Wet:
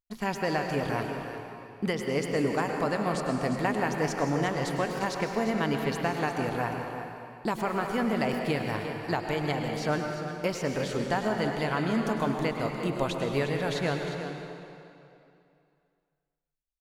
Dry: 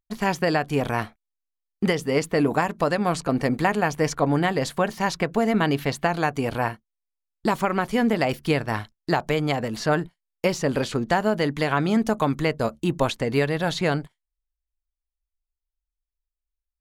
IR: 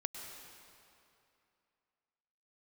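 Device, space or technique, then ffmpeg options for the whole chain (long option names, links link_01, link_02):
cave: -filter_complex "[0:a]aecho=1:1:354:0.299[link_01];[1:a]atrim=start_sample=2205[link_02];[link_01][link_02]afir=irnorm=-1:irlink=0,volume=-5.5dB"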